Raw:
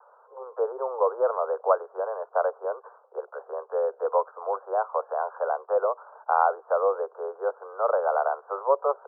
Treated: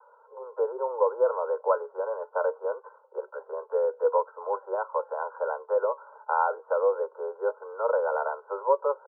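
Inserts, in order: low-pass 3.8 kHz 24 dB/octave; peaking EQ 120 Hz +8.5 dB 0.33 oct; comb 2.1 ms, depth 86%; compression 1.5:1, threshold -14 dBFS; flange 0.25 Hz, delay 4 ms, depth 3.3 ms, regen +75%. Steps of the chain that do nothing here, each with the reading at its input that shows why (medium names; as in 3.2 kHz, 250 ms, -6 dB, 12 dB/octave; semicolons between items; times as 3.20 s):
low-pass 3.8 kHz: input has nothing above 1.6 kHz; peaking EQ 120 Hz: input has nothing below 360 Hz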